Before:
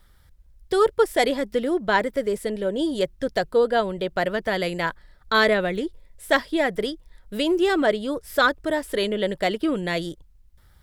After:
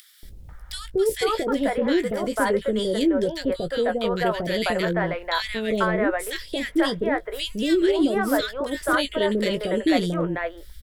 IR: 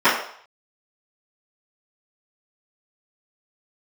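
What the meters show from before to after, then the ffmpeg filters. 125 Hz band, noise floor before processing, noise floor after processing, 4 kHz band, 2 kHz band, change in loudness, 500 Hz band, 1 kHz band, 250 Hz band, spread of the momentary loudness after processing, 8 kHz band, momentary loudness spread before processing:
+4.0 dB, -55 dBFS, -43 dBFS, +0.5 dB, -2.5 dB, -0.5 dB, -0.5 dB, -2.0 dB, +3.0 dB, 6 LU, +3.5 dB, 8 LU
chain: -filter_complex "[0:a]alimiter=limit=-15.5dB:level=0:latency=1:release=43,acompressor=mode=upward:threshold=-35dB:ratio=2.5,asplit=2[a][b];[b]adelay=18,volume=-10dB[c];[a][c]amix=inputs=2:normalize=0,acrossover=split=530|2000[d][e][f];[d]adelay=230[g];[e]adelay=490[h];[g][h][f]amix=inputs=3:normalize=0,volume=4dB"

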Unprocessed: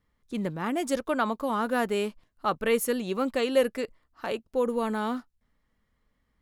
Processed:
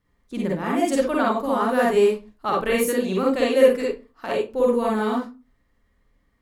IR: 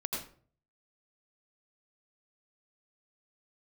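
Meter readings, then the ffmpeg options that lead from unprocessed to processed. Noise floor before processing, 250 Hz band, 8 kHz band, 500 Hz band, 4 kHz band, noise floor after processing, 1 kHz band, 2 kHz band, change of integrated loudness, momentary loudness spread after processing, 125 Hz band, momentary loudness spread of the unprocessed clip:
-75 dBFS, +6.5 dB, +4.0 dB, +8.0 dB, +3.5 dB, -66 dBFS, +6.0 dB, +5.0 dB, +7.0 dB, 11 LU, n/a, 10 LU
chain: -filter_complex "[1:a]atrim=start_sample=2205,asetrate=79380,aresample=44100[a];[0:a][a]afir=irnorm=-1:irlink=0,volume=7dB"

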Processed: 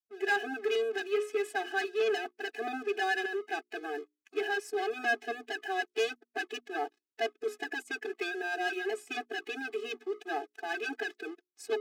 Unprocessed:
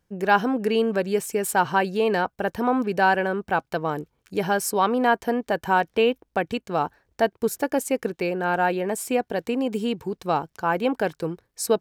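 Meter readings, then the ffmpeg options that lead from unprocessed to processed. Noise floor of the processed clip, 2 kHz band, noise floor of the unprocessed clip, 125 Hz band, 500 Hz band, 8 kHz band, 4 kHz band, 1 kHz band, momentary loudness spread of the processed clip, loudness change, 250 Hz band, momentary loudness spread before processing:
under -85 dBFS, -5.0 dB, -74 dBFS, under -40 dB, -9.5 dB, -16.0 dB, -5.0 dB, -13.0 dB, 8 LU, -10.0 dB, -17.0 dB, 7 LU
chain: -filter_complex "[0:a]asplit=3[a][b][c];[a]bandpass=f=530:t=q:w=8,volume=0dB[d];[b]bandpass=f=1.84k:t=q:w=8,volume=-6dB[e];[c]bandpass=f=2.48k:t=q:w=8,volume=-9dB[f];[d][e][f]amix=inputs=3:normalize=0,bandreject=f=60:t=h:w=6,bandreject=f=120:t=h:w=6,bandreject=f=180:t=h:w=6,bandreject=f=240:t=h:w=6,bandreject=f=300:t=h:w=6,bandreject=f=360:t=h:w=6,bandreject=f=420:t=h:w=6,asplit=2[g][h];[h]highpass=f=720:p=1,volume=23dB,asoftclip=type=tanh:threshold=-16dB[i];[g][i]amix=inputs=2:normalize=0,lowpass=f=6.6k:p=1,volume=-6dB,acrossover=split=170|5800[j][k][l];[k]aeval=exprs='sgn(val(0))*max(abs(val(0))-0.00447,0)':c=same[m];[j][m][l]amix=inputs=3:normalize=0,afftfilt=real='re*eq(mod(floor(b*sr/1024/220),2),1)':imag='im*eq(mod(floor(b*sr/1024/220),2),1)':win_size=1024:overlap=0.75"

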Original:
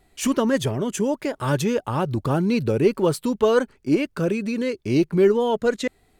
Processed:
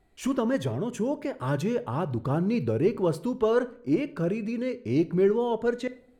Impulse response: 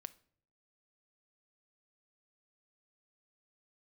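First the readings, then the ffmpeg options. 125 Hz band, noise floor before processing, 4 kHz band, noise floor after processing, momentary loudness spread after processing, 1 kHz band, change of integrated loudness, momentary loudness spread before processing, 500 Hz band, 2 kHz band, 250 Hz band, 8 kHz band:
-4.5 dB, -63 dBFS, -10.5 dB, -57 dBFS, 7 LU, -6.0 dB, -5.0 dB, 6 LU, -5.0 dB, -7.5 dB, -5.0 dB, under -10 dB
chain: -filter_complex "[0:a]highshelf=f=2.7k:g=-9[a];[1:a]atrim=start_sample=2205,asetrate=38808,aresample=44100[b];[a][b]afir=irnorm=-1:irlink=0"

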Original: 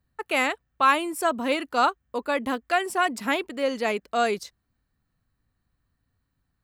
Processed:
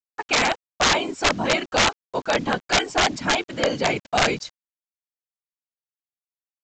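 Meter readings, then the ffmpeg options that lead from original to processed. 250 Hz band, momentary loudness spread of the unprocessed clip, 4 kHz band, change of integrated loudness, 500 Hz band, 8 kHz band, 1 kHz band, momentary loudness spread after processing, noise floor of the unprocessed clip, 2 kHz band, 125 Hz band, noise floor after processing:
+2.0 dB, 6 LU, +10.5 dB, +3.5 dB, +2.0 dB, +11.0 dB, +0.5 dB, 5 LU, -77 dBFS, +4.5 dB, n/a, under -85 dBFS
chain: -af "equalizer=f=97:w=1.5:g=3,aecho=1:1:1.3:0.42,acontrast=78,afftfilt=real='hypot(re,im)*cos(2*PI*random(0))':imag='hypot(re,im)*sin(2*PI*random(1))':win_size=512:overlap=0.75,asoftclip=type=tanh:threshold=-7.5dB,acrusher=bits=7:mix=0:aa=0.000001,aeval=exprs='(mod(5.62*val(0)+1,2)-1)/5.62':c=same,aresample=16000,aresample=44100,volume=3.5dB"

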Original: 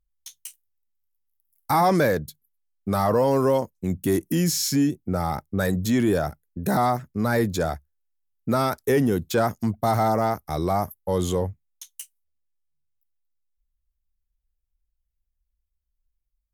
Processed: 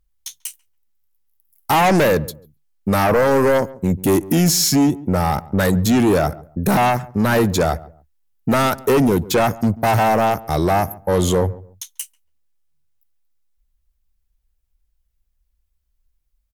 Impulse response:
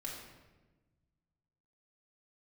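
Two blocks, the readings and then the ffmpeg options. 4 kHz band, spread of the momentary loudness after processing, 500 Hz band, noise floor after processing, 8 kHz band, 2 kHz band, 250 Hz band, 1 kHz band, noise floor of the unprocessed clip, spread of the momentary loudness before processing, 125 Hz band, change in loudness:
+8.5 dB, 16 LU, +6.0 dB, -69 dBFS, +8.0 dB, +8.5 dB, +6.0 dB, +6.0 dB, -79 dBFS, 17 LU, +6.0 dB, +6.0 dB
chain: -filter_complex "[0:a]aeval=exprs='0.335*sin(PI/2*2.24*val(0)/0.335)':c=same,asplit=2[a][b];[b]adelay=140,lowpass=f=830:p=1,volume=-18dB,asplit=2[c][d];[d]adelay=140,lowpass=f=830:p=1,volume=0.27[e];[a][c][e]amix=inputs=3:normalize=0,volume=-1.5dB"

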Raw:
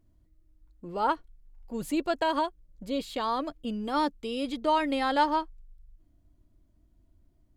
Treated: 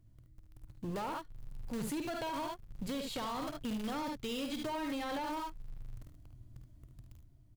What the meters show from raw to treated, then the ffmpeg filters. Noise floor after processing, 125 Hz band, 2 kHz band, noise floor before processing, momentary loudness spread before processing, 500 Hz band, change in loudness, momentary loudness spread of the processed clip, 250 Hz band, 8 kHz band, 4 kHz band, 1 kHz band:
-60 dBFS, n/a, -9.5 dB, -66 dBFS, 13 LU, -10.0 dB, -9.5 dB, 19 LU, -7.0 dB, +0.5 dB, -6.5 dB, -12.0 dB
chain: -filter_complex "[0:a]asplit=2[a][b];[b]acrusher=bits=6:dc=4:mix=0:aa=0.000001,volume=-4dB[c];[a][c]amix=inputs=2:normalize=0,equalizer=f=460:t=o:w=2.8:g=-4.5,aecho=1:1:51|74:0.355|0.376,acrossover=split=650[d][e];[e]alimiter=limit=-23dB:level=0:latency=1:release=30[f];[d][f]amix=inputs=2:normalize=0,acompressor=threshold=-41dB:ratio=3,asoftclip=type=tanh:threshold=-38.5dB,equalizer=f=120:t=o:w=0.6:g=14.5,dynaudnorm=f=100:g=13:m=5dB"

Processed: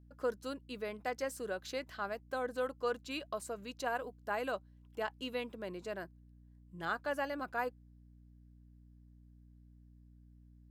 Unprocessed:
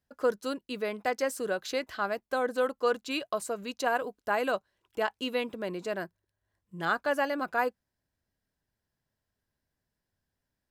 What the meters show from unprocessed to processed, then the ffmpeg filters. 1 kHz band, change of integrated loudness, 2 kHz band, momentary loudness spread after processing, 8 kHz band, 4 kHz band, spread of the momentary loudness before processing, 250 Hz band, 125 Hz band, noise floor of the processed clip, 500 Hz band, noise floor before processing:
-8.0 dB, -8.0 dB, -8.0 dB, 7 LU, -8.0 dB, -8.0 dB, 7 LU, -8.0 dB, -3.5 dB, -60 dBFS, -8.0 dB, under -85 dBFS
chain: -af "aeval=exprs='val(0)+0.00316*(sin(2*PI*60*n/s)+sin(2*PI*2*60*n/s)/2+sin(2*PI*3*60*n/s)/3+sin(2*PI*4*60*n/s)/4+sin(2*PI*5*60*n/s)/5)':c=same,volume=-8dB"

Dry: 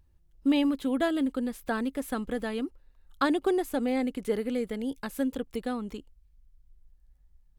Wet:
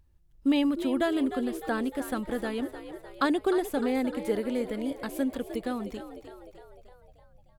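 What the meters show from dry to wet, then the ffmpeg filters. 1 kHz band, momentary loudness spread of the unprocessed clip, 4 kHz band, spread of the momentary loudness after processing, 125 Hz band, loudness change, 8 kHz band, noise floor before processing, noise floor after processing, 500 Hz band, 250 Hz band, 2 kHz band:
+0.5 dB, 9 LU, +0.5 dB, 15 LU, n/a, +0.5 dB, +0.5 dB, -63 dBFS, -59 dBFS, +1.0 dB, 0.0 dB, +0.5 dB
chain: -filter_complex "[0:a]asplit=7[a][b][c][d][e][f][g];[b]adelay=304,afreqshift=62,volume=-11.5dB[h];[c]adelay=608,afreqshift=124,volume=-16.5dB[i];[d]adelay=912,afreqshift=186,volume=-21.6dB[j];[e]adelay=1216,afreqshift=248,volume=-26.6dB[k];[f]adelay=1520,afreqshift=310,volume=-31.6dB[l];[g]adelay=1824,afreqshift=372,volume=-36.7dB[m];[a][h][i][j][k][l][m]amix=inputs=7:normalize=0"

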